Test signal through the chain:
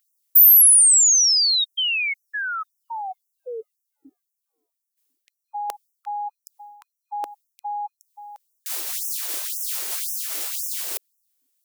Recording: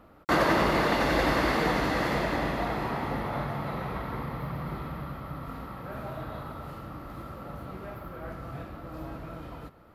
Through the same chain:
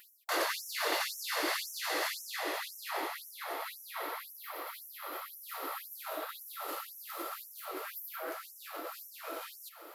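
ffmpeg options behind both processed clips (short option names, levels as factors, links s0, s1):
-af "lowshelf=f=430:g=11.5,areverse,acompressor=threshold=0.0251:ratio=5,areverse,crystalizer=i=7.5:c=0,aeval=exprs='val(0)+0.01*(sin(2*PI*50*n/s)+sin(2*PI*2*50*n/s)/2+sin(2*PI*3*50*n/s)/3+sin(2*PI*4*50*n/s)/4+sin(2*PI*5*50*n/s)/5)':c=same,afftfilt=real='re*gte(b*sr/1024,290*pow(5500/290,0.5+0.5*sin(2*PI*1.9*pts/sr)))':imag='im*gte(b*sr/1024,290*pow(5500/290,0.5+0.5*sin(2*PI*1.9*pts/sr)))':win_size=1024:overlap=0.75,volume=1.12"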